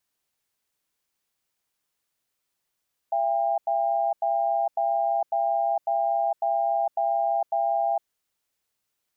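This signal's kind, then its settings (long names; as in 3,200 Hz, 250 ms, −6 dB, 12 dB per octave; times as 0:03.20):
tone pair in a cadence 676 Hz, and 801 Hz, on 0.46 s, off 0.09 s, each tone −24 dBFS 4.95 s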